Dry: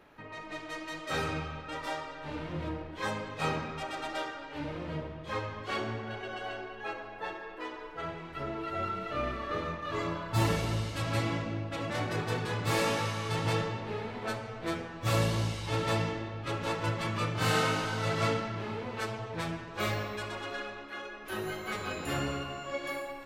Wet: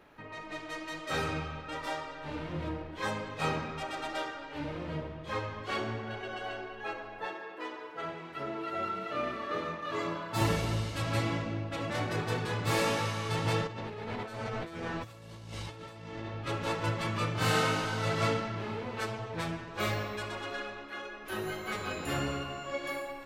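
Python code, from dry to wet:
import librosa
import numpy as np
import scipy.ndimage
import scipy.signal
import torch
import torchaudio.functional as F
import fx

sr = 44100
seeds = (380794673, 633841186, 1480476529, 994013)

y = fx.highpass(x, sr, hz=170.0, slope=12, at=(7.26, 10.41))
y = fx.over_compress(y, sr, threshold_db=-42.0, ratio=-1.0, at=(13.67, 16.26))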